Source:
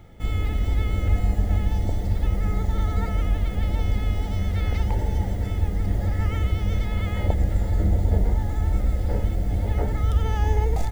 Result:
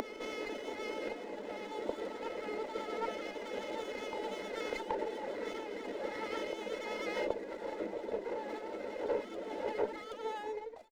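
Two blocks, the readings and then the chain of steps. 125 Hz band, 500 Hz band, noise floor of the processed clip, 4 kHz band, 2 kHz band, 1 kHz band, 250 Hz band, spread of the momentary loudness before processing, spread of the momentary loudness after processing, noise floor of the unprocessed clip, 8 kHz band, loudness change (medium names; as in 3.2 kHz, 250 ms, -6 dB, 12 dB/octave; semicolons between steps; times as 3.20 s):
under -40 dB, -1.5 dB, -46 dBFS, -5.0 dB, -5.0 dB, -5.5 dB, -12.5 dB, 3 LU, 5 LU, -28 dBFS, no reading, -14.5 dB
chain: fade out at the end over 1.23 s; distance through air 160 m; reverb removal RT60 0.78 s; compression, threshold -23 dBFS, peak gain reduction 8.5 dB; comb 2 ms, depth 63%; reverse echo 776 ms -7.5 dB; upward compressor, threshold -27 dBFS; steep high-pass 220 Hz 96 dB/octave; sliding maximum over 5 samples; trim +1.5 dB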